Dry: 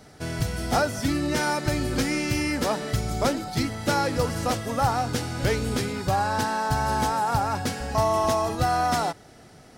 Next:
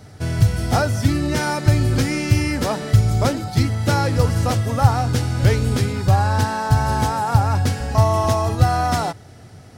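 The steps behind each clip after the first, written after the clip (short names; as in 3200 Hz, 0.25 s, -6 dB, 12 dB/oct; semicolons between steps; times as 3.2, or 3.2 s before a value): bell 100 Hz +14.5 dB 0.85 oct; gain +2.5 dB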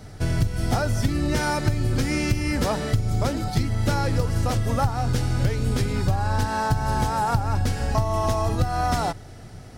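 octaver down 2 oct, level -4 dB; compressor 10:1, threshold -18 dBFS, peak gain reduction 12.5 dB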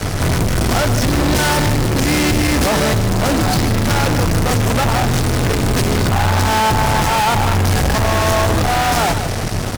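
fuzz box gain 46 dB, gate -43 dBFS; echo 0.151 s -10.5 dB; gain -1 dB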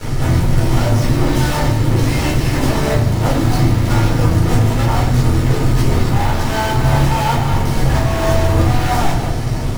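in parallel at -4 dB: decimation with a swept rate 34×, swing 160% 3 Hz; on the sum: shoebox room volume 270 m³, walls furnished, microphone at 4.3 m; gain -13.5 dB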